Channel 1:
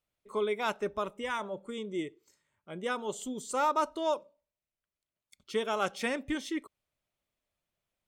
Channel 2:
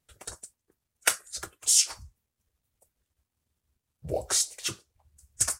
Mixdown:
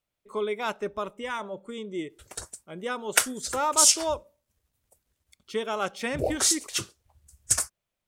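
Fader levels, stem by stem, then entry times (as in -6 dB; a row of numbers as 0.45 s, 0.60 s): +1.5 dB, +2.5 dB; 0.00 s, 2.10 s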